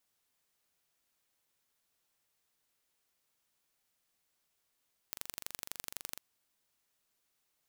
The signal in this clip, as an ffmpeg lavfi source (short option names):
-f lavfi -i "aevalsrc='0.282*eq(mod(n,1845),0)*(0.5+0.5*eq(mod(n,3690),0))':d=1.06:s=44100"